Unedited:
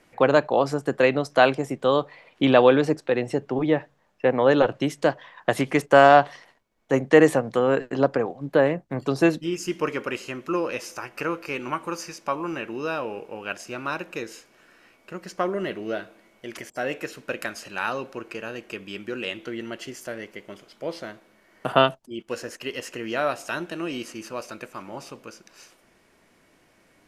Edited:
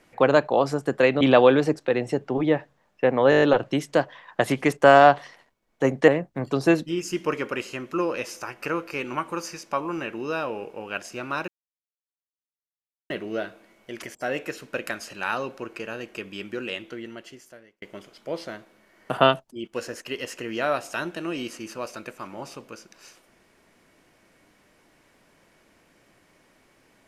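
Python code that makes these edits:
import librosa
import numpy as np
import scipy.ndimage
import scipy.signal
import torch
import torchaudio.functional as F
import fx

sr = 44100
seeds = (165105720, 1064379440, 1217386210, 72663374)

y = fx.edit(x, sr, fx.cut(start_s=1.21, length_s=1.21),
    fx.stutter(start_s=4.51, slice_s=0.02, count=7),
    fx.cut(start_s=7.17, length_s=1.46),
    fx.silence(start_s=14.03, length_s=1.62),
    fx.fade_out_span(start_s=19.08, length_s=1.29), tone=tone)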